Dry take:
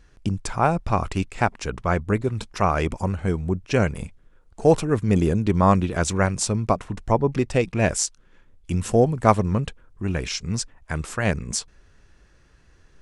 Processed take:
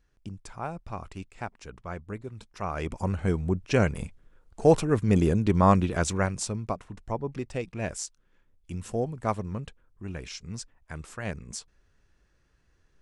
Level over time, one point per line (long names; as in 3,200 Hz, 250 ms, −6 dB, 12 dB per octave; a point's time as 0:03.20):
0:02.51 −15 dB
0:03.14 −2.5 dB
0:05.90 −2.5 dB
0:06.84 −11.5 dB